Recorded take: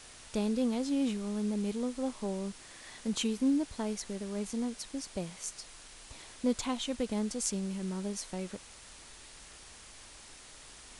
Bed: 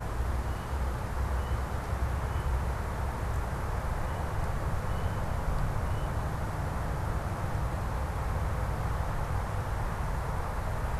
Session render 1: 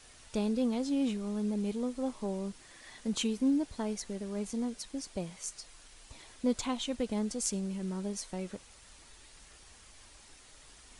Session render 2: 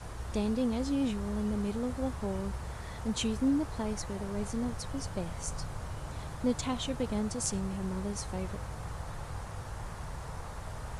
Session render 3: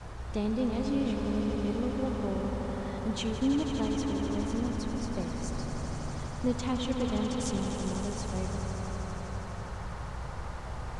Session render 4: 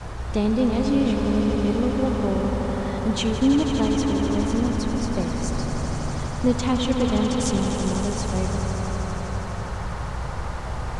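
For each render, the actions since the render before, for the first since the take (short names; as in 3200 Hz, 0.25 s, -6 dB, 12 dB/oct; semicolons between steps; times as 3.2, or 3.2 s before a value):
denoiser 6 dB, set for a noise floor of -52 dBFS
add bed -8.5 dB
air absorption 69 m; swelling echo 82 ms, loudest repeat 5, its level -10 dB
gain +9 dB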